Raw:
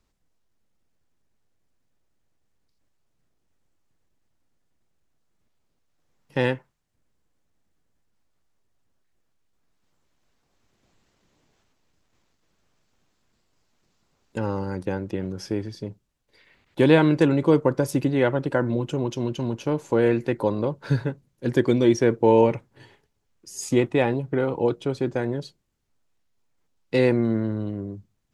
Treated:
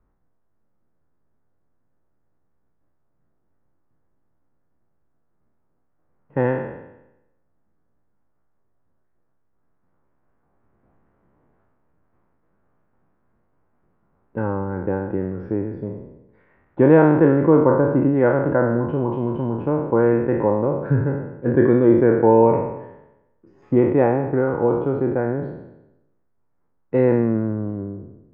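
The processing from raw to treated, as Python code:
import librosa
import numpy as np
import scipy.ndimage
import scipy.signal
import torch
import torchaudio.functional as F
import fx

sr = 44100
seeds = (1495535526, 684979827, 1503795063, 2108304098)

y = fx.spec_trails(x, sr, decay_s=0.93)
y = scipy.signal.sosfilt(scipy.signal.butter(4, 1500.0, 'lowpass', fs=sr, output='sos'), y)
y = y * librosa.db_to_amplitude(2.5)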